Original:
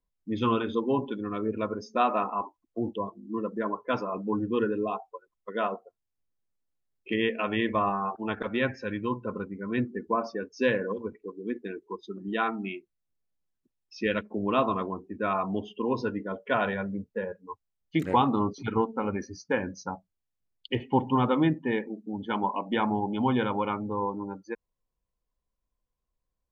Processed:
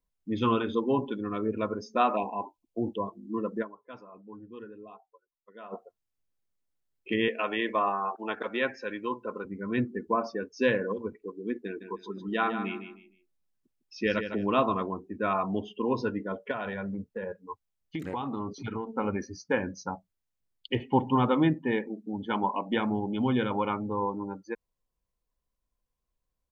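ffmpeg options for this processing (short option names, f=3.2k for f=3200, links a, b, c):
-filter_complex "[0:a]asplit=3[a][b][c];[a]afade=t=out:st=2.15:d=0.02[d];[b]asuperstop=centerf=1500:order=12:qfactor=1.2,afade=t=in:st=2.15:d=0.02,afade=t=out:st=2.85:d=0.02[e];[c]afade=t=in:st=2.85:d=0.02[f];[d][e][f]amix=inputs=3:normalize=0,asettb=1/sr,asplit=3[g][h][i];[g]atrim=end=7.284[j];[h]atrim=start=7.28:end=9.45,asetpts=PTS-STARTPTS,afade=t=in:d=0.004:c=qsin,afade=t=out:st=2.166:d=0.004:c=qsin,highpass=330[k];[i]atrim=start=9.446[l];[j][k]acrossfade=d=0.004:c1=hsin:c2=qsin[m];[m][l]acrossfade=d=0.004:c1=qsin:c2=hsin,asplit=3[n][o][p];[n]afade=t=out:st=11.8:d=0.02[q];[o]aecho=1:1:154|308|462:0.355|0.0958|0.0259,afade=t=in:st=11.8:d=0.02,afade=t=out:st=14.45:d=0.02[r];[p]afade=t=in:st=14.45:d=0.02[s];[q][r][s]amix=inputs=3:normalize=0,asettb=1/sr,asplit=3[t][u][v];[t]atrim=end=16.514[w];[u]atrim=start=16.51:end=18.87,asetpts=PTS-STARTPTS,afade=t=in:d=0.004:c=qsin,afade=t=out:st=2.356:d=0.004:c=qsin,acompressor=threshold=-30dB:ratio=6:attack=3.2:release=140:knee=1:detection=peak[x];[v]atrim=start=18.866[y];[w][x]acrossfade=d=0.004:c1=hsin:c2=qsin[z];[z][y]acrossfade=d=0.004:c1=qsin:c2=hsin,asettb=1/sr,asplit=3[aa][ab][ac];[aa]atrim=end=22.784[ad];[ab]atrim=start=22.78:end=23.51,asetpts=PTS-STARTPTS,afade=t=in:d=0.004:c=qsin,afade=t=out:st=0.726:d=0.004:c=qsin,equalizer=f=900:t=o:w=0.8:g=-8[ae];[ac]atrim=start=23.506[af];[ad][ae]acrossfade=d=0.004:c1=hsin:c2=qsin[ag];[ag][af]acrossfade=d=0.004:c1=qsin:c2=hsin,asplit=3[ah][ai][aj];[ah]atrim=end=3.82,asetpts=PTS-STARTPTS,afade=t=out:st=3.62:d=0.2:c=exp:silence=0.133352[ak];[ai]atrim=start=3.82:end=5.54,asetpts=PTS-STARTPTS,volume=-17.5dB[al];[aj]atrim=start=5.54,asetpts=PTS-STARTPTS,afade=t=in:d=0.2:c=exp:silence=0.133352[am];[ak][al][am]concat=n=3:v=0:a=1"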